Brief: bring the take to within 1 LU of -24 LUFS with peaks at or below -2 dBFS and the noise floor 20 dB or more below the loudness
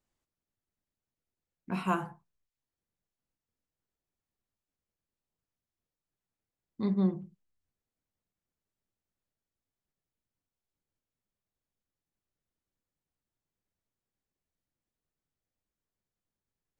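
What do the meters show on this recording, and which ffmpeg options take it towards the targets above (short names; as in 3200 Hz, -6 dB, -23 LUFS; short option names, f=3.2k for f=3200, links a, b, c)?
loudness -32.0 LUFS; peak -14.5 dBFS; loudness target -24.0 LUFS
-> -af "volume=8dB"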